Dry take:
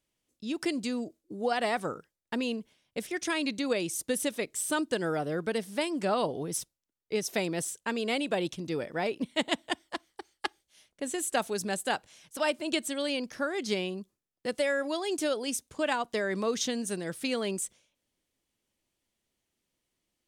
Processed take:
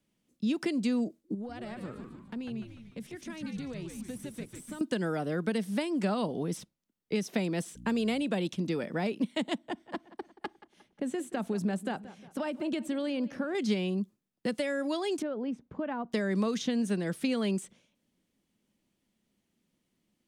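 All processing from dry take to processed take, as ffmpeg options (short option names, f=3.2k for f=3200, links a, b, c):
-filter_complex "[0:a]asettb=1/sr,asplit=3[a][b][c];[a]atrim=end=1.344[d];[b]atrim=start=1.34:end=4.81,asetpts=PTS-STARTPTS,afade=t=in:d=0.004:c=qsin,afade=t=out:st=3.466:d=0.004:c=qsin,acompressor=threshold=-47dB:ratio=3:attack=3.2:release=140:knee=1:detection=peak,aeval=exprs='(tanh(28.2*val(0)+0.55)-tanh(0.55))/28.2':c=same,asplit=8[e][f][g][h][i][j][k][l];[f]adelay=148,afreqshift=-120,volume=-5.5dB[m];[g]adelay=296,afreqshift=-240,volume=-11dB[n];[h]adelay=444,afreqshift=-360,volume=-16.5dB[o];[i]adelay=592,afreqshift=-480,volume=-22dB[p];[j]adelay=740,afreqshift=-600,volume=-27.6dB[q];[k]adelay=888,afreqshift=-720,volume=-33.1dB[r];[l]adelay=1036,afreqshift=-840,volume=-38.6dB[s];[e][m][n][o][p][q][r][s]amix=inputs=8:normalize=0,atrim=end_sample=153027[t];[c]atrim=start=4.806[u];[d][t]acrossfade=d=0.004:c1=hsin:c2=qsin[v];[v][u]acrossfade=d=0.004:c1=qsin:c2=hsin,asettb=1/sr,asplit=3[w][x][y];[w]atrim=end=7.754[z];[x]atrim=start=7.75:end=8.23,asetpts=PTS-STARTPTS,afade=t=in:d=0.004:c=qsin,afade=t=out:st=0.476:d=0.004:c=qsin,highshelf=f=8.1k:g=6.5,aeval=exprs='val(0)+0.00251*(sin(2*PI*60*n/s)+sin(2*PI*2*60*n/s)/2+sin(2*PI*3*60*n/s)/3+sin(2*PI*4*60*n/s)/4+sin(2*PI*5*60*n/s)/5)':c=same[aa];[y]atrim=start=8.226[ab];[z][aa]acrossfade=d=0.004:c1=hsin:c2=qsin[ac];[ac][ab]acrossfade=d=0.004:c1=qsin:c2=hsin,asettb=1/sr,asplit=3[ad][ae][af];[ad]atrim=end=9.584[ag];[ae]atrim=start=9.58:end=13.55,asetpts=PTS-STARTPTS,afade=t=in:d=0.004:c=qsin,afade=t=out:st=3.966:d=0.004:c=qsin,highshelf=f=2.6k:g=-11,acompressor=threshold=-33dB:ratio=2.5:attack=3.2:release=140:knee=1:detection=peak,asplit=2[ah][ai];[ai]adelay=178,lowpass=f=4.1k:p=1,volume=-18.5dB,asplit=2[aj][ak];[ak]adelay=178,lowpass=f=4.1k:p=1,volume=0.48,asplit=2[al][am];[am]adelay=178,lowpass=f=4.1k:p=1,volume=0.48,asplit=2[an][ao];[ao]adelay=178,lowpass=f=4.1k:p=1,volume=0.48[ap];[ah][aj][al][an][ap]amix=inputs=5:normalize=0,atrim=end_sample=175077[aq];[af]atrim=start=13.546[ar];[ag][aq]acrossfade=d=0.004:c1=hsin:c2=qsin[as];[as][ar]acrossfade=d=0.004:c1=qsin:c2=hsin,asettb=1/sr,asplit=3[at][au][av];[at]atrim=end=15.224[aw];[au]atrim=start=15.22:end=16.12,asetpts=PTS-STARTPTS,afade=t=in:d=0.004:c=qsin,afade=t=out:st=0.896:d=0.004:c=qsin,lowpass=1.4k,acompressor=threshold=-46dB:ratio=1.5:attack=3.2:release=140:knee=1:detection=peak[ax];[av]atrim=start=16.116[ay];[aw][ax]acrossfade=d=0.004:c1=hsin:c2=qsin[az];[az][ay]acrossfade=d=0.004:c1=qsin:c2=hsin,bass=f=250:g=-1,treble=f=4k:g=-3,acrossover=split=330|880|4400[ba][bb][bc][bd];[ba]acompressor=threshold=-46dB:ratio=4[be];[bb]acompressor=threshold=-39dB:ratio=4[bf];[bc]acompressor=threshold=-40dB:ratio=4[bg];[bd]acompressor=threshold=-49dB:ratio=4[bh];[be][bf][bg][bh]amix=inputs=4:normalize=0,equalizer=f=200:t=o:w=1.1:g=14.5,volume=1.5dB"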